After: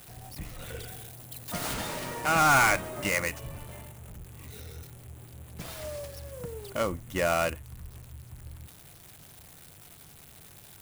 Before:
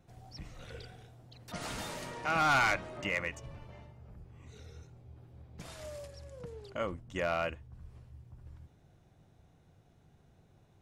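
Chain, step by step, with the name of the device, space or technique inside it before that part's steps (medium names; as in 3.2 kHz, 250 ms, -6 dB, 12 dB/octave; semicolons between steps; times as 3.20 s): budget class-D amplifier (dead-time distortion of 0.095 ms; zero-crossing glitches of -39 dBFS); 0.87–1.74 s: treble shelf 6.3 kHz +6 dB; trim +6.5 dB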